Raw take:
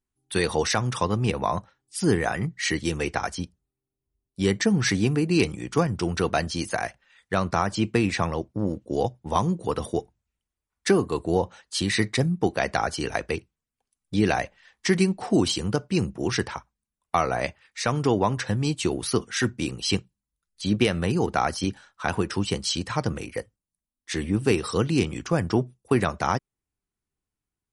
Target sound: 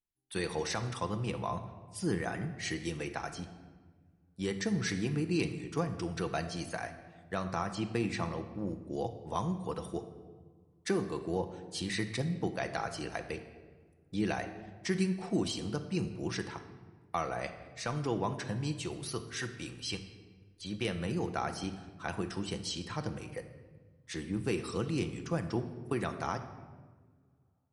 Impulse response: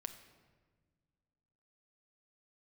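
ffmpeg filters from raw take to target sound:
-filter_complex "[0:a]asettb=1/sr,asplit=3[link_01][link_02][link_03];[link_01]atrim=end=18.774[link_04];[link_02]atrim=start=18.77:end=20.85,asetpts=PTS-STARTPTS,afade=type=in:duration=0.004:curve=qsin,afade=type=out:start_time=2.076:duration=0.004:curve=qsin,equalizer=frequency=220:width_type=o:width=1.8:gain=-6.5[link_05];[link_03]atrim=start=20.846[link_06];[link_04][link_05]acrossfade=duration=0.004:curve1=hsin:curve2=qsin[link_07];[link_07][link_06]acrossfade=duration=0.004:curve1=qsin:curve2=hsin[link_08];[1:a]atrim=start_sample=2205[link_09];[link_08][link_09]afir=irnorm=-1:irlink=0,volume=-7.5dB"

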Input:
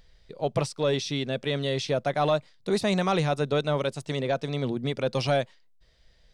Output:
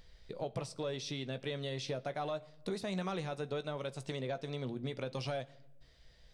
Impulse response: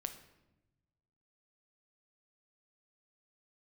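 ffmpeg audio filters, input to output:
-filter_complex "[0:a]acompressor=threshold=-36dB:ratio=5,asplit=2[link_01][link_02];[1:a]atrim=start_sample=2205,adelay=16[link_03];[link_02][link_03]afir=irnorm=-1:irlink=0,volume=-9dB[link_04];[link_01][link_04]amix=inputs=2:normalize=0,volume=-1dB"

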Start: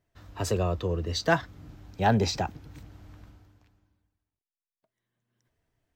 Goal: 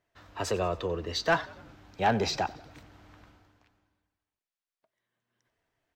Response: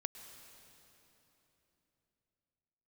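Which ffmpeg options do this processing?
-filter_complex "[0:a]asplit=2[link_01][link_02];[link_02]highpass=frequency=720:poles=1,volume=14dB,asoftclip=type=tanh:threshold=-9.5dB[link_03];[link_01][link_03]amix=inputs=2:normalize=0,lowpass=frequency=3300:poles=1,volume=-6dB,asplit=5[link_04][link_05][link_06][link_07][link_08];[link_05]adelay=92,afreqshift=-37,volume=-20dB[link_09];[link_06]adelay=184,afreqshift=-74,volume=-25.4dB[link_10];[link_07]adelay=276,afreqshift=-111,volume=-30.7dB[link_11];[link_08]adelay=368,afreqshift=-148,volume=-36.1dB[link_12];[link_04][link_09][link_10][link_11][link_12]amix=inputs=5:normalize=0,volume=-4.5dB"

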